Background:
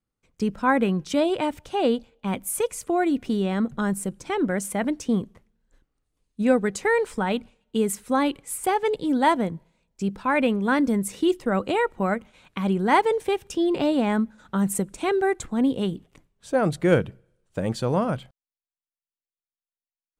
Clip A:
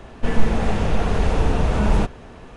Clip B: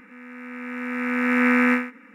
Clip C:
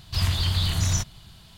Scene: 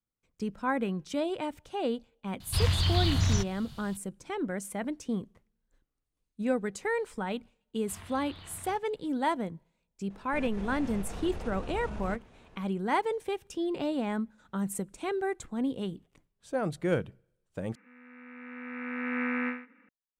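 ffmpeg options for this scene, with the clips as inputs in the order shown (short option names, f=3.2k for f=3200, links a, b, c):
-filter_complex "[3:a]asplit=2[a][b];[0:a]volume=-9dB[c];[a]acrossover=split=5400[d][e];[e]acompressor=threshold=-47dB:ratio=4:attack=1:release=60[f];[d][f]amix=inputs=2:normalize=0[g];[b]acrossover=split=240 3000:gain=0.224 1 0.0631[h][i][j];[h][i][j]amix=inputs=3:normalize=0[k];[1:a]alimiter=limit=-14dB:level=0:latency=1:release=21[l];[2:a]lowpass=f=3.7k:w=0.5412,lowpass=f=3.7k:w=1.3066[m];[c]asplit=2[n][o];[n]atrim=end=17.754[p];[m]atrim=end=2.14,asetpts=PTS-STARTPTS,volume=-12.5dB[q];[o]atrim=start=19.886[r];[g]atrim=end=1.57,asetpts=PTS-STARTPTS,volume=-2dB,afade=t=in:d=0.004:c=hsin,afade=t=out:st=1.566:d=0.004:c=hsin,adelay=2400[s];[k]atrim=end=1.57,asetpts=PTS-STARTPTS,volume=-15dB,afade=t=in:d=0.004:c=hsin,afade=t=out:st=1.566:d=0.004:c=hsin,adelay=7750[t];[l]atrim=end=2.56,asetpts=PTS-STARTPTS,volume=-16.5dB,afade=t=in:d=0.004:c=hsin,afade=t=out:st=2.556:d=0.004:c=hsin,adelay=445410S[u];[p][q]acrossfade=d=0.004:c1=hsin:c2=hsin[v];[v][r]acrossfade=d=0.004:c1=hsin:c2=hsin[w];[w][s][t][u]amix=inputs=4:normalize=0"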